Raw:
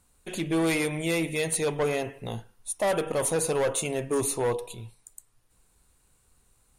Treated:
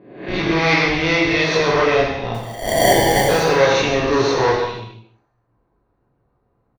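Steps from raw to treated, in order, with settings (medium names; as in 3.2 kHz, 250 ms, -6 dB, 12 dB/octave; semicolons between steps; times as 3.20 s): reverse spectral sustain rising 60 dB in 0.93 s; high-pass 240 Hz 6 dB/octave; level-controlled noise filter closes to 600 Hz, open at -23.5 dBFS; in parallel at -7 dB: Schmitt trigger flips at -26.5 dBFS; on the sum: rippled Chebyshev low-pass 6 kHz, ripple 3 dB; 2.34–3.29 s: sample-rate reducer 1.3 kHz, jitter 0%; on a send: delay 153 ms -12.5 dB; on the sum: gated-style reverb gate 300 ms falling, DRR -2 dB; trim +7.5 dB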